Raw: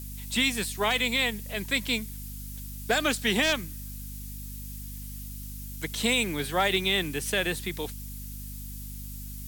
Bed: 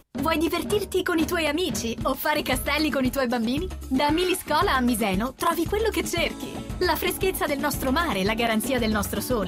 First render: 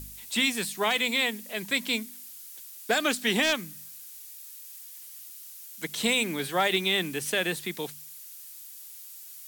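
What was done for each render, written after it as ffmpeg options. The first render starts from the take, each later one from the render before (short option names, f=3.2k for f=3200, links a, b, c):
-af "bandreject=f=50:t=h:w=4,bandreject=f=100:t=h:w=4,bandreject=f=150:t=h:w=4,bandreject=f=200:t=h:w=4,bandreject=f=250:t=h:w=4"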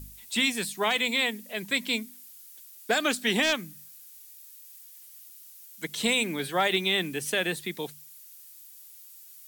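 -af "afftdn=nr=6:nf=-45"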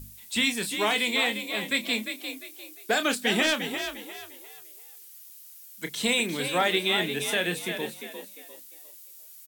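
-filter_complex "[0:a]asplit=2[a][b];[b]adelay=29,volume=-9.5dB[c];[a][c]amix=inputs=2:normalize=0,asplit=2[d][e];[e]asplit=4[f][g][h][i];[f]adelay=350,afreqshift=46,volume=-8dB[j];[g]adelay=700,afreqshift=92,volume=-17.9dB[k];[h]adelay=1050,afreqshift=138,volume=-27.8dB[l];[i]adelay=1400,afreqshift=184,volume=-37.7dB[m];[j][k][l][m]amix=inputs=4:normalize=0[n];[d][n]amix=inputs=2:normalize=0"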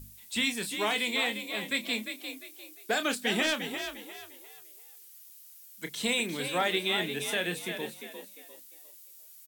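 -af "volume=-4dB"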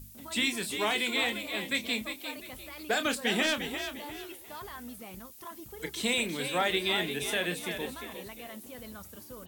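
-filter_complex "[1:a]volume=-22dB[a];[0:a][a]amix=inputs=2:normalize=0"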